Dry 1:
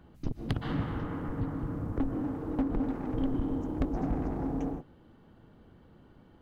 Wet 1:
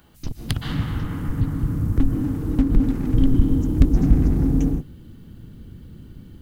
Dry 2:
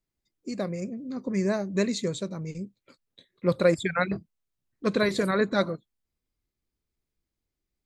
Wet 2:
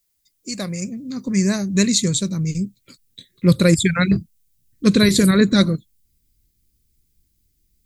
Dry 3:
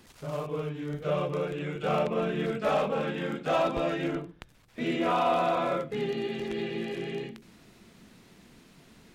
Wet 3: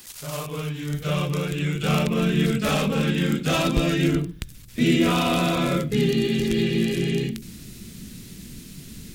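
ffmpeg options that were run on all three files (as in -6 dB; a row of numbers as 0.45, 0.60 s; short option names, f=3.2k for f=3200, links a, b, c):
-af "asubboost=boost=12:cutoff=230,crystalizer=i=9.5:c=0,volume=-1dB"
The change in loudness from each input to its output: +12.0, +9.5, +7.0 LU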